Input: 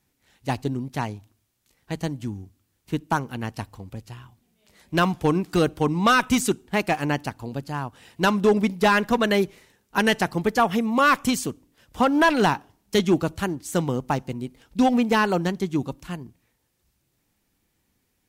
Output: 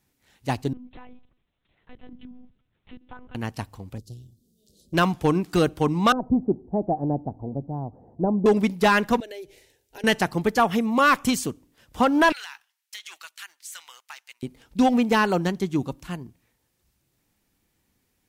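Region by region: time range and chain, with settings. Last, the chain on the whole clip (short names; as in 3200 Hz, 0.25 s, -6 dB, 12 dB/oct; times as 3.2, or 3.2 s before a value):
0.73–3.35 compressor 4:1, threshold -41 dBFS + monotone LPC vocoder at 8 kHz 250 Hz
3.98–4.94 inverse Chebyshev band-stop 1000–2000 Hz, stop band 60 dB + upward compressor, threshold -60 dBFS + Doppler distortion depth 0.28 ms
6.12–8.46 G.711 law mismatch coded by mu + Chebyshev low-pass 760 Hz, order 4
9.2–10.04 compressor 5:1, threshold -33 dBFS + fixed phaser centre 480 Hz, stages 4
12.32–14.43 ladder high-pass 1400 Hz, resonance 20% + compressor 4:1, threshold -38 dBFS + sample leveller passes 1
whole clip: dry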